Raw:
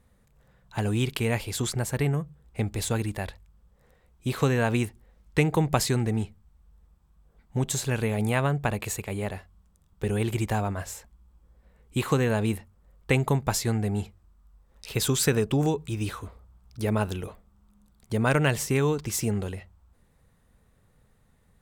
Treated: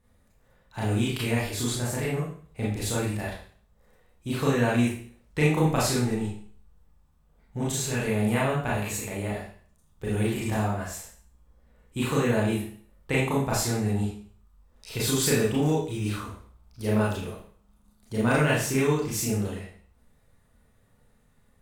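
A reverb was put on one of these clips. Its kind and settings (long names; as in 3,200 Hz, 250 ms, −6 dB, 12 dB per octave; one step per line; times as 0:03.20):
four-comb reverb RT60 0.49 s, combs from 26 ms, DRR −6.5 dB
level −6.5 dB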